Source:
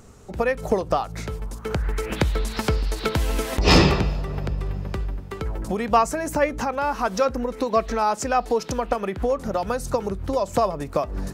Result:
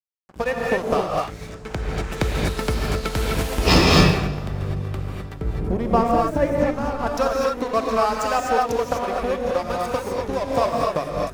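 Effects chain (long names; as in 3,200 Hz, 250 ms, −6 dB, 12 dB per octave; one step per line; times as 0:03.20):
0:01.24–0:02.11: low-pass filter 8,000 Hz 24 dB per octave
dead-zone distortion −30 dBFS
0:05.34–0:07.07: tilt shelving filter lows +9 dB, about 680 Hz
reverb whose tail is shaped and stops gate 280 ms rising, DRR −2 dB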